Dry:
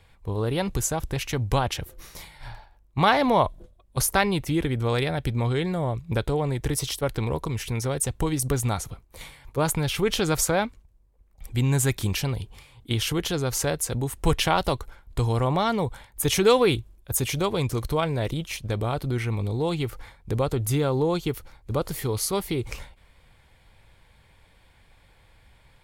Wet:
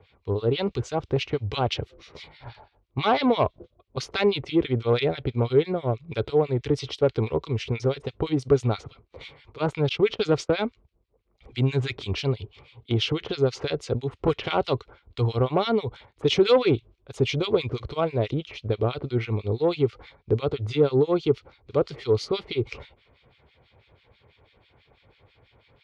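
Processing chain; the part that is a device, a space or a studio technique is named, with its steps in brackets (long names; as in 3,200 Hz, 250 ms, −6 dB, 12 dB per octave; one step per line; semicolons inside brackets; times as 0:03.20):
guitar amplifier with harmonic tremolo (two-band tremolo in antiphase 6.1 Hz, depth 100%, crossover 1,600 Hz; soft clipping −17.5 dBFS, distortion −18 dB; loudspeaker in its box 89–4,300 Hz, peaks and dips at 180 Hz −7 dB, 420 Hz +7 dB, 910 Hz −4 dB, 1,700 Hz −8 dB)
0:09.89–0:10.55: noise gate −33 dBFS, range −26 dB
level +6 dB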